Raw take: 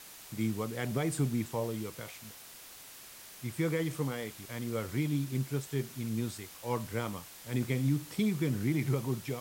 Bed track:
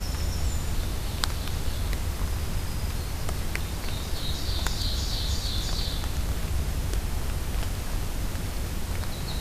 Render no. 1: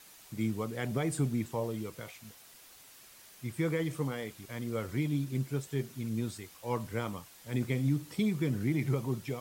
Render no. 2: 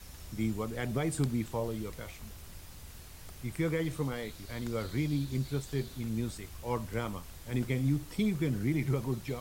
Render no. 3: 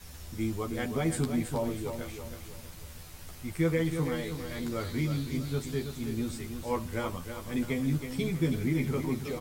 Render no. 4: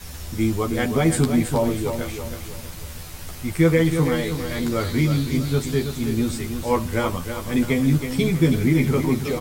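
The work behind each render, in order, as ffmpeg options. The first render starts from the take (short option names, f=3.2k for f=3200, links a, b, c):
-af "afftdn=nr=6:nf=-51"
-filter_complex "[1:a]volume=-20dB[a];[0:a][a]amix=inputs=2:normalize=0"
-filter_complex "[0:a]asplit=2[a][b];[b]adelay=12,volume=-2.5dB[c];[a][c]amix=inputs=2:normalize=0,asplit=2[d][e];[e]aecho=0:1:323|646|969|1292|1615:0.398|0.159|0.0637|0.0255|0.0102[f];[d][f]amix=inputs=2:normalize=0"
-af "volume=10.5dB"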